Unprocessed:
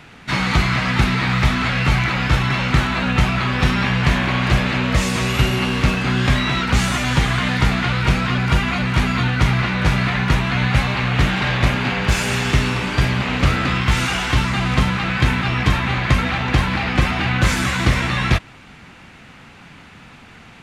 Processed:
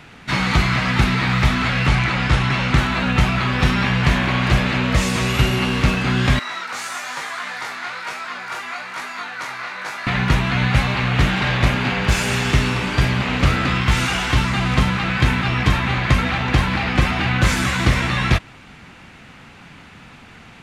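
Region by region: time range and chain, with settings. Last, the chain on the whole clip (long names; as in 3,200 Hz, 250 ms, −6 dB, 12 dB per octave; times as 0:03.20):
0:01.86–0:02.78: bad sample-rate conversion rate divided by 2×, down none, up filtered + highs frequency-modulated by the lows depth 0.19 ms
0:06.39–0:10.07: high-pass filter 780 Hz + parametric band 3,000 Hz −8 dB 0.81 octaves + chorus effect 1.1 Hz, delay 19 ms, depth 5.6 ms
whole clip: no processing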